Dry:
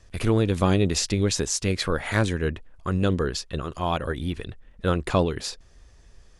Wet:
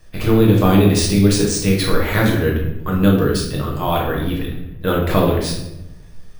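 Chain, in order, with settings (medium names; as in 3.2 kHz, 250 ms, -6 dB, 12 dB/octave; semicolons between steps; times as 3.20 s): reverberation RT60 0.90 s, pre-delay 6 ms, DRR -2.5 dB; careless resampling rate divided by 3×, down filtered, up hold; trim +2.5 dB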